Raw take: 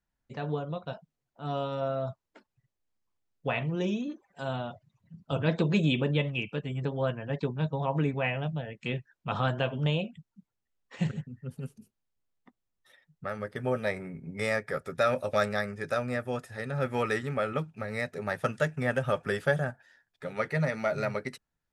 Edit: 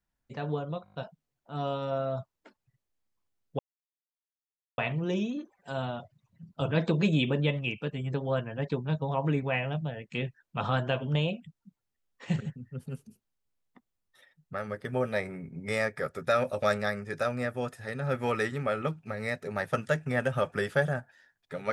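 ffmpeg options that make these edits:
-filter_complex "[0:a]asplit=7[s0][s1][s2][s3][s4][s5][s6];[s0]atrim=end=0.862[s7];[s1]atrim=start=0.838:end=0.862[s8];[s2]atrim=start=0.838:end=0.862[s9];[s3]atrim=start=0.838:end=0.862[s10];[s4]atrim=start=0.838:end=0.862[s11];[s5]atrim=start=0.838:end=3.49,asetpts=PTS-STARTPTS,afade=t=out:st=2.648:d=0.004:c=hsin,apad=pad_dur=1.19[s12];[s6]atrim=start=3.49,asetpts=PTS-STARTPTS,afade=t=in:d=0.004:c=hsin[s13];[s7][s8]acrossfade=d=0.004:c1=hsin:c2=hsin[s14];[s14][s9]acrossfade=d=0.004:c1=hsin:c2=hsin[s15];[s15][s10]acrossfade=d=0.004:c1=hsin:c2=hsin[s16];[s16][s11]acrossfade=d=0.004:c1=hsin:c2=hsin[s17];[s12][s13]concat=n=2:v=0:a=1[s18];[s17][s18]acrossfade=d=0.004:c1=hsin:c2=hsin"

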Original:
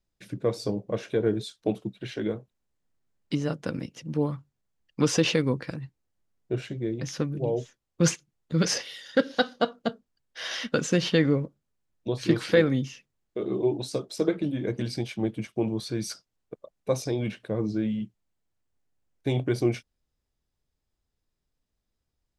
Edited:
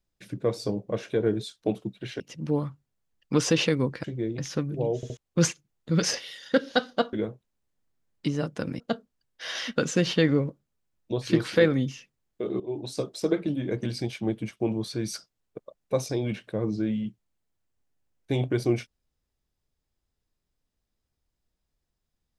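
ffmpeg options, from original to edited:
-filter_complex "[0:a]asplit=9[s0][s1][s2][s3][s4][s5][s6][s7][s8];[s0]atrim=end=2.202[s9];[s1]atrim=start=3.868:end=5.712[s10];[s2]atrim=start=6.668:end=7.662[s11];[s3]atrim=start=7.588:end=7.662[s12];[s4]atrim=start=7.588:end=7.662[s13];[s5]atrim=start=7.798:end=9.762[s14];[s6]atrim=start=2.198:end=3.872[s15];[s7]atrim=start=9.758:end=13.56,asetpts=PTS-STARTPTS,afade=t=out:st=3.798:d=0.004:c=hsin:silence=0.158489[s16];[s8]atrim=start=13.56,asetpts=PTS-STARTPTS,afade=t=in:d=0.39:silence=0.158489[s17];[s9][s10]acrossfade=d=0.004:c1=hsin:c2=hsin[s18];[s18][s11]acrossfade=d=0.004:c1=hsin:c2=hsin[s19];[s19][s12]acrossfade=d=0.004:c1=hsin:c2=hsin[s20];[s20][s13]acrossfade=d=0.004:c1=hsin:c2=hsin[s21];[s21][s14]acrossfade=d=0.004:c1=hsin:c2=hsin[s22];[s22][s15]acrossfade=d=0.004:c1=hsin:c2=hsin[s23];[s16][s17]concat=n=2:v=0:a=1[s24];[s23][s24]acrossfade=d=0.004:c1=hsin:c2=hsin"

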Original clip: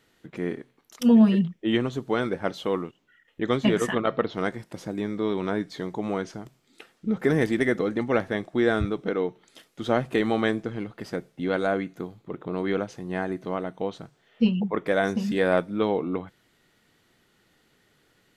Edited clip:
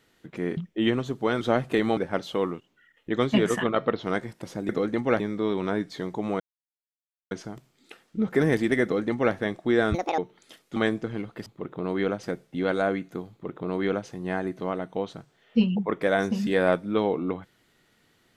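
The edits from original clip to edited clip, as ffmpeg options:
-filter_complex "[0:a]asplit=12[s0][s1][s2][s3][s4][s5][s6][s7][s8][s9][s10][s11];[s0]atrim=end=0.572[s12];[s1]atrim=start=1.438:end=2.282[s13];[s2]atrim=start=9.818:end=10.382[s14];[s3]atrim=start=2.278:end=5.002[s15];[s4]atrim=start=7.718:end=8.232[s16];[s5]atrim=start=4.998:end=6.2,asetpts=PTS-STARTPTS,afade=t=out:st=1.198:d=0.004:c=hsin,apad=pad_dur=0.91[s17];[s6]atrim=start=6.2:end=8.834,asetpts=PTS-STARTPTS,afade=t=in:d=0.004:c=hsin[s18];[s7]atrim=start=8.83:end=9.24,asetpts=PTS-STARTPTS,asetrate=74970,aresample=44100[s19];[s8]atrim=start=9.236:end=9.822[s20];[s9]atrim=start=10.378:end=11.082[s21];[s10]atrim=start=12.148:end=12.922[s22];[s11]atrim=start=11.078[s23];[s12][s13]acrossfade=d=0.004:c1=hsin:c2=hsin[s24];[s24][s14]acrossfade=d=0.004:c1=hsin:c2=hsin[s25];[s25][s15]acrossfade=d=0.004:c1=hsin:c2=hsin[s26];[s26][s16]acrossfade=d=0.004:c1=hsin:c2=hsin[s27];[s17][s18]concat=n=2:v=0:a=1[s28];[s27][s28]acrossfade=d=0.004:c1=hsin:c2=hsin[s29];[s29][s19]acrossfade=d=0.004:c1=hsin:c2=hsin[s30];[s30][s20]acrossfade=d=0.004:c1=hsin:c2=hsin[s31];[s31][s21]acrossfade=d=0.004:c1=hsin:c2=hsin[s32];[s32][s22]acrossfade=d=0.004:c1=hsin:c2=hsin[s33];[s33][s23]acrossfade=d=0.004:c1=hsin:c2=hsin"

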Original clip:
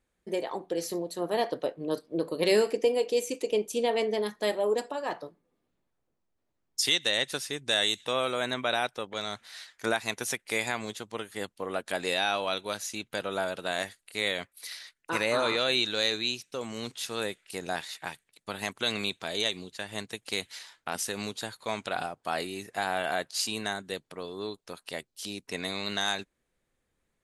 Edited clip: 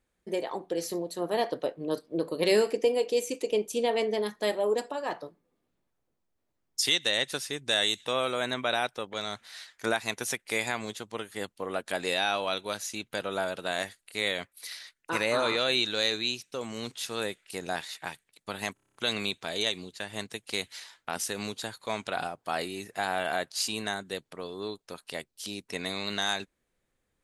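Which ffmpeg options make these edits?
-filter_complex "[0:a]asplit=8[s0][s1][s2][s3][s4][s5][s6][s7];[s0]atrim=end=18.772[s8];[s1]atrim=start=18.738:end=18.772[s9];[s2]atrim=start=18.738:end=18.772[s10];[s3]atrim=start=18.738:end=18.772[s11];[s4]atrim=start=18.738:end=18.772[s12];[s5]atrim=start=18.738:end=18.772[s13];[s6]atrim=start=18.738:end=18.772[s14];[s7]atrim=start=18.738[s15];[s8][s9]acrossfade=d=0.004:c1=hsin:c2=hsin[s16];[s16][s10]acrossfade=d=0.004:c1=hsin:c2=hsin[s17];[s17][s11]acrossfade=d=0.004:c1=hsin:c2=hsin[s18];[s18][s12]acrossfade=d=0.004:c1=hsin:c2=hsin[s19];[s19][s13]acrossfade=d=0.004:c1=hsin:c2=hsin[s20];[s20][s14]acrossfade=d=0.004:c1=hsin:c2=hsin[s21];[s21][s15]acrossfade=d=0.004:c1=hsin:c2=hsin"

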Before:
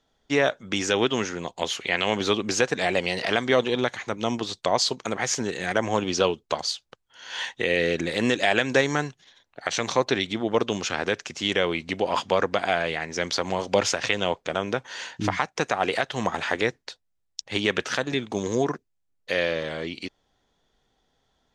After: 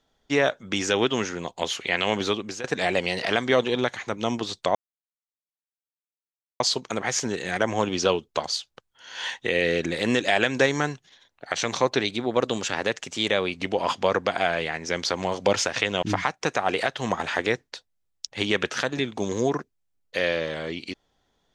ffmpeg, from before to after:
-filter_complex "[0:a]asplit=6[s0][s1][s2][s3][s4][s5];[s0]atrim=end=2.64,asetpts=PTS-STARTPTS,afade=t=out:st=2.19:d=0.45:silence=0.158489[s6];[s1]atrim=start=2.64:end=4.75,asetpts=PTS-STARTPTS,afade=t=in:d=0.004:c=hsin:silence=0.158489,afade=t=out:st=2.106:d=0.004:c=hsin,apad=pad_dur=1.85[s7];[s2]atrim=start=4.75:end=10.164,asetpts=PTS-STARTPTS,afade=t=in:d=0.004:c=hsin[s8];[s3]atrim=start=10.16:end=11.85,asetpts=PTS-STARTPTS,asetrate=47628,aresample=44100,atrim=end_sample=69008,asetpts=PTS-STARTPTS[s9];[s4]atrim=start=11.846:end=14.302[s10];[s5]atrim=start=15.168[s11];[s6][s7][s8]concat=n=3:v=0:a=1[s12];[s12][s9]acrossfade=d=0.004:c1=hsin:c2=hsin[s13];[s13][s10]acrossfade=d=0.004:c1=hsin:c2=hsin[s14];[s14][s11]acrossfade=d=0.004:c1=hsin:c2=hsin"

